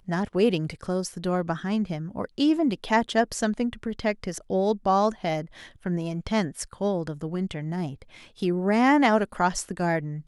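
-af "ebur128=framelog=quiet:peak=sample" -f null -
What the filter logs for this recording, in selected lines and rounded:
Integrated loudness:
  I:         -26.0 LUFS
  Threshold: -36.1 LUFS
Loudness range:
  LRA:         4.2 LU
  Threshold: -46.6 LUFS
  LRA low:   -29.4 LUFS
  LRA high:  -25.2 LUFS
Sample peak:
  Peak:       -6.9 dBFS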